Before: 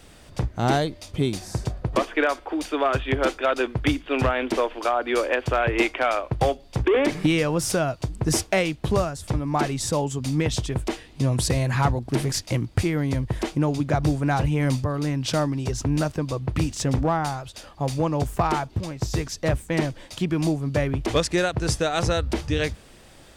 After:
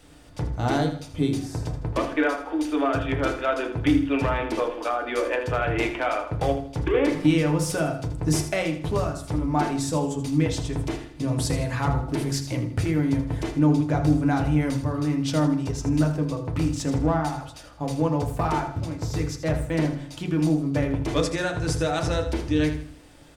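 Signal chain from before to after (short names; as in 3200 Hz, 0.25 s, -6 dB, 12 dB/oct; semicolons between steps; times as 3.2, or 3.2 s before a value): on a send: feedback echo 80 ms, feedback 37%, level -11 dB; on the sum: FDN reverb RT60 0.45 s, low-frequency decay 1.4×, high-frequency decay 0.35×, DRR 2.5 dB; gain -5 dB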